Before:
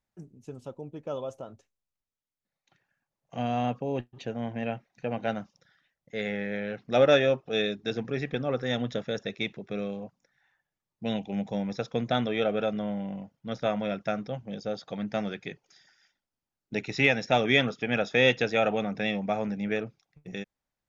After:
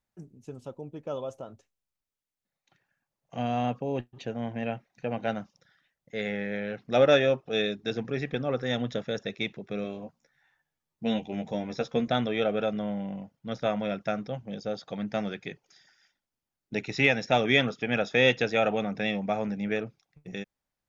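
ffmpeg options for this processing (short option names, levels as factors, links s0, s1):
-filter_complex "[0:a]asettb=1/sr,asplit=3[s0][s1][s2];[s0]atrim=end=9.834[s3];[s1]atrim=start=9.83:end=12.08,asetpts=PTS-STARTPTS,afade=t=in:d=0.004:c=qsin,afade=t=out:st=2.246:d=0.004:c=qsin,asplit=2[s4][s5];[s5]adelay=13,volume=0.596[s6];[s4][s6]amix=inputs=2:normalize=0,atrim=end_sample=99225[s7];[s2]atrim=start=12.076[s8];[s3][s7]acrossfade=d=0.004:c1=hsin:c2=qsin[s9];[s9][s8]acrossfade=d=0.004:c1=qsin:c2=hsin"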